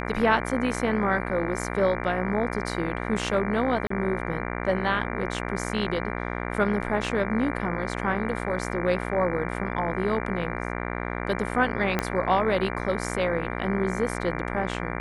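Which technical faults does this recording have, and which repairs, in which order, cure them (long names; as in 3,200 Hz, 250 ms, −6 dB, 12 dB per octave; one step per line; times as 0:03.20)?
mains buzz 60 Hz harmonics 39 −31 dBFS
0:03.87–0:03.90: drop-out 34 ms
0:11.99: click −9 dBFS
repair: click removal
hum removal 60 Hz, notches 39
repair the gap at 0:03.87, 34 ms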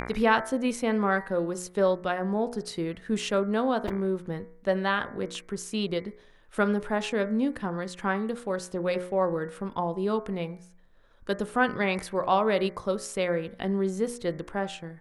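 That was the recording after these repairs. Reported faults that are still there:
0:11.99: click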